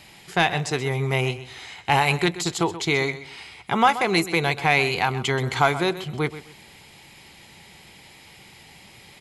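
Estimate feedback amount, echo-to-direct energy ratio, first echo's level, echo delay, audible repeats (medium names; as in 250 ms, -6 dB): 24%, -13.5 dB, -14.0 dB, 129 ms, 2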